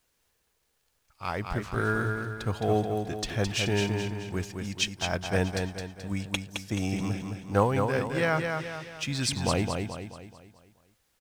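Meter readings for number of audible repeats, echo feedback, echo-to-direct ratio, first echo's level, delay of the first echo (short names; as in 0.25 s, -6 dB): 5, 45%, -4.0 dB, -5.0 dB, 0.215 s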